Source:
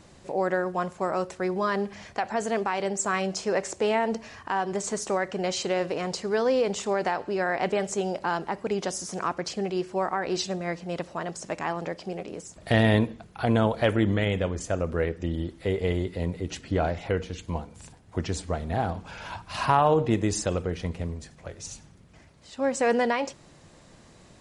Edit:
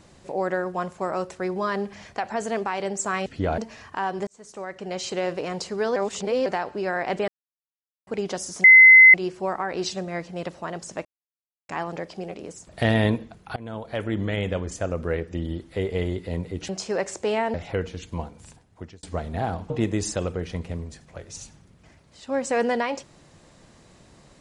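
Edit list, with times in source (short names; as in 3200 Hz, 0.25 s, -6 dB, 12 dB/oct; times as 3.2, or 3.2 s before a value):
3.26–4.11 swap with 16.58–16.9
4.8–5.75 fade in
6.49–6.99 reverse
7.81–8.6 mute
9.17–9.67 bleep 2050 Hz -6.5 dBFS
11.58 insert silence 0.64 s
13.45–14.38 fade in, from -22 dB
17.78–18.39 fade out
19.06–20 cut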